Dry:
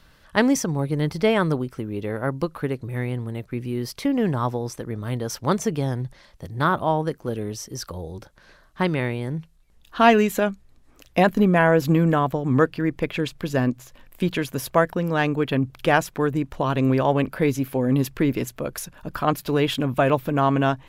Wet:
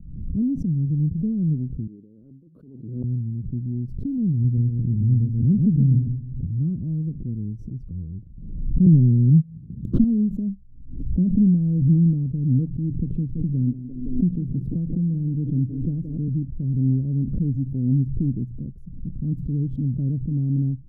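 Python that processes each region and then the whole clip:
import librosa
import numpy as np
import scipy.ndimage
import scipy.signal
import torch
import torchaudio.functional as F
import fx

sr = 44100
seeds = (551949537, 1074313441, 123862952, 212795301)

y = fx.chain(x, sr, fx.highpass(hz=500.0, slope=12),
    fx.over_compress(threshold_db=-36.0, ratio=-1.0), at=(1.87, 3.04))
y = fx.chain(y, sr, fx.low_shelf(hz=190.0, db=7.5),
    fx.echo_feedback(ms=133, feedback_pct=29, wet_db=-6), at=(4.44, 6.47))
y = fx.chain(y, sr, fx.highpass(hz=100.0, slope=24),
    fx.leveller(passes=3), at=(8.86, 10.04))
y = fx.chain(y, sr, fx.echo_banded(ms=171, feedback_pct=60, hz=410.0, wet_db=-12.5),
    fx.band_squash(depth_pct=40), at=(12.9, 16.28))
y = scipy.signal.sosfilt(scipy.signal.cheby2(4, 60, 750.0, 'lowpass', fs=sr, output='sos'), y)
y = fx.pre_swell(y, sr, db_per_s=54.0)
y = y * 10.0 ** (4.0 / 20.0)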